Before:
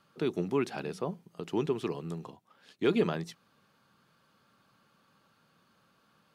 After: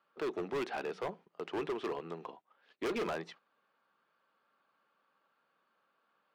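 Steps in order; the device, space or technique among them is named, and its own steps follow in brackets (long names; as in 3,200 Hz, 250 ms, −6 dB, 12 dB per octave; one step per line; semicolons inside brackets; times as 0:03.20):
walkie-talkie (band-pass filter 450–2,500 Hz; hard clipping −36 dBFS, distortion −6 dB; noise gate −59 dBFS, range −10 dB)
level +4 dB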